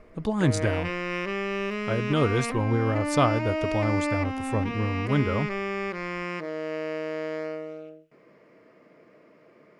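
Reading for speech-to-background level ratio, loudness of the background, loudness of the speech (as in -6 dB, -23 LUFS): 3.0 dB, -30.5 LUFS, -27.5 LUFS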